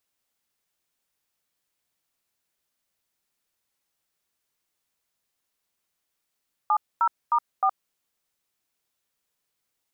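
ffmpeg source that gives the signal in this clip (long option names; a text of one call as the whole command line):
ffmpeg -f lavfi -i "aevalsrc='0.0944*clip(min(mod(t,0.309),0.068-mod(t,0.309))/0.002,0,1)*(eq(floor(t/0.309),0)*(sin(2*PI*852*mod(t,0.309))+sin(2*PI*1209*mod(t,0.309)))+eq(floor(t/0.309),1)*(sin(2*PI*941*mod(t,0.309))+sin(2*PI*1336*mod(t,0.309)))+eq(floor(t/0.309),2)*(sin(2*PI*941*mod(t,0.309))+sin(2*PI*1209*mod(t,0.309)))+eq(floor(t/0.309),3)*(sin(2*PI*770*mod(t,0.309))+sin(2*PI*1209*mod(t,0.309))))':duration=1.236:sample_rate=44100" out.wav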